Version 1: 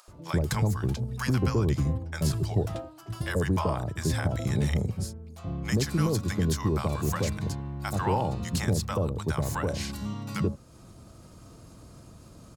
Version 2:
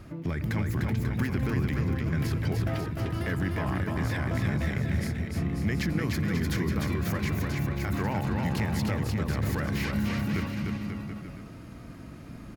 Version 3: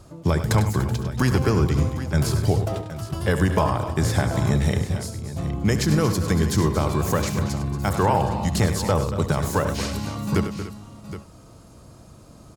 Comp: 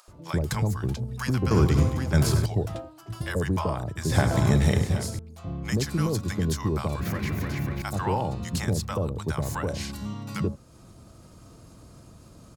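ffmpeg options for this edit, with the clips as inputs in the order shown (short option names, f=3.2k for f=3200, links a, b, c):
-filter_complex "[2:a]asplit=2[a][b];[0:a]asplit=4[c][d][e][f];[c]atrim=end=1.512[g];[a]atrim=start=1.508:end=2.462[h];[d]atrim=start=2.458:end=4.122[i];[b]atrim=start=4.118:end=5.192[j];[e]atrim=start=5.188:end=7.002[k];[1:a]atrim=start=6.998:end=7.822[l];[f]atrim=start=7.818[m];[g][h]acrossfade=d=0.004:c1=hsin:c2=hsin[n];[n][i]acrossfade=d=0.004:c1=hsin:c2=hsin[o];[o][j]acrossfade=d=0.004:c1=hsin:c2=hsin[p];[p][k]acrossfade=d=0.004:c1=hsin:c2=hsin[q];[q][l]acrossfade=d=0.004:c1=hsin:c2=hsin[r];[r][m]acrossfade=d=0.004:c1=hsin:c2=hsin"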